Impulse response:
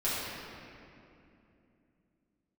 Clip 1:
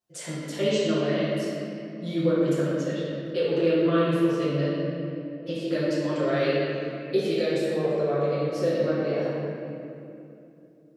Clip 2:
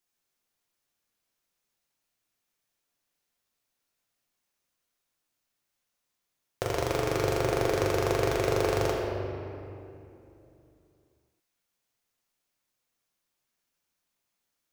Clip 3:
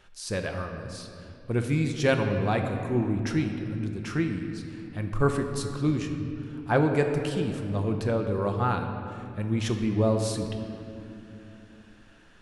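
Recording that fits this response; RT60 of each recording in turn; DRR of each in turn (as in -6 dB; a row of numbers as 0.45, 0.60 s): 1; 2.8, 2.8, 2.9 s; -12.0, -3.0, 4.0 dB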